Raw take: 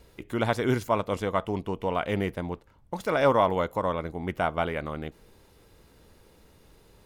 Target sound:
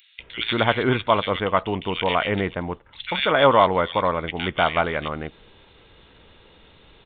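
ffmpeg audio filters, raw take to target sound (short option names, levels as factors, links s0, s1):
-filter_complex "[0:a]aresample=8000,aresample=44100,crystalizer=i=9.5:c=0,acrossover=split=2100[s0][s1];[s0]adelay=190[s2];[s2][s1]amix=inputs=2:normalize=0,volume=1.41"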